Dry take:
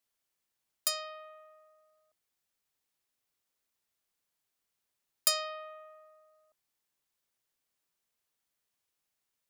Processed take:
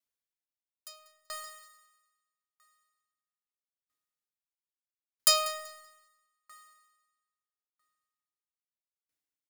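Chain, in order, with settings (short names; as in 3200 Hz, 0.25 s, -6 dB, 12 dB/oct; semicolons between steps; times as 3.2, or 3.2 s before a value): bell 780 Hz -3.5 dB 0.56 oct; sample leveller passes 3; feedback echo 0.191 s, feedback 44%, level -12 dB; FDN reverb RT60 3 s, high-frequency decay 0.95×, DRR 4 dB; dB-ramp tremolo decaying 0.77 Hz, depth 39 dB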